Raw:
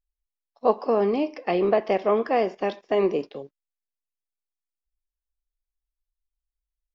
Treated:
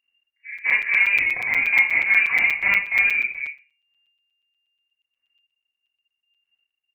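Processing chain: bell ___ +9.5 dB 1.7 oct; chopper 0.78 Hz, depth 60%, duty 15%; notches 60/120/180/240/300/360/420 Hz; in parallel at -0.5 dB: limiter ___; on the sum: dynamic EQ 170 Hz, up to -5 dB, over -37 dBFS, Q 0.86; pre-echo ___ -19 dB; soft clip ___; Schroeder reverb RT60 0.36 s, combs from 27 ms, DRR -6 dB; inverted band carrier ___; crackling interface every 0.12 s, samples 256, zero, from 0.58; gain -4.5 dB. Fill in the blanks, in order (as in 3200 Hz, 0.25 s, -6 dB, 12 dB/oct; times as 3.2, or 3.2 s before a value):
670 Hz, -18.5 dBFS, 0.199 s, -13 dBFS, 2800 Hz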